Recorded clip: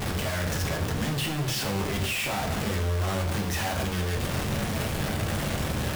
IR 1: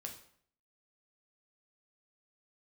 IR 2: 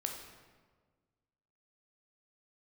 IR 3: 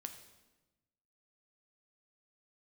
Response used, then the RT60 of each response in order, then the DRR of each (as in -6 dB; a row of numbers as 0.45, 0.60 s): 1; 0.60, 1.5, 1.1 s; 1.5, 2.0, 6.5 dB